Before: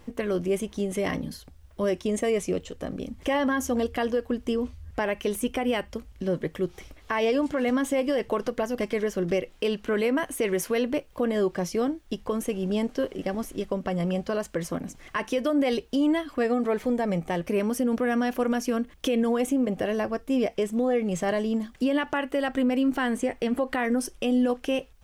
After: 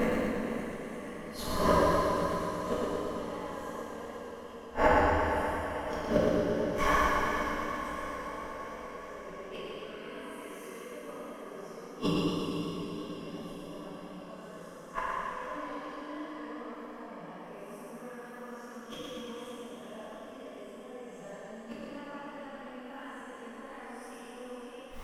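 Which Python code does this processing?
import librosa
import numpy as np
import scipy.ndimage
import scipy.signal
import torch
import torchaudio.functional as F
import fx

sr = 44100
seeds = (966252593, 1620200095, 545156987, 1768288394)

y = fx.spec_swells(x, sr, rise_s=0.8)
y = fx.peak_eq(y, sr, hz=1100.0, db=10.0, octaves=0.64)
y = fx.gate_flip(y, sr, shuts_db=-21.0, range_db=-36)
y = fx.echo_diffused(y, sr, ms=485, feedback_pct=61, wet_db=-8.5)
y = fx.rev_gated(y, sr, seeds[0], gate_ms=490, shape='falling', drr_db=-8.0)
y = fx.echo_warbled(y, sr, ms=116, feedback_pct=66, rate_hz=2.8, cents=50, wet_db=-4)
y = F.gain(torch.from_numpy(y), 3.0).numpy()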